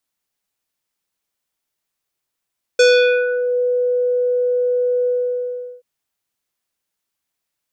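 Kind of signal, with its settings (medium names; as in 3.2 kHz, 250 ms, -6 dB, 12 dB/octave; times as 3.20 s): synth note square B4 24 dB/octave, low-pass 650 Hz, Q 1.3, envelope 3.5 oct, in 0.79 s, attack 6.2 ms, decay 0.47 s, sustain -10 dB, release 0.75 s, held 2.28 s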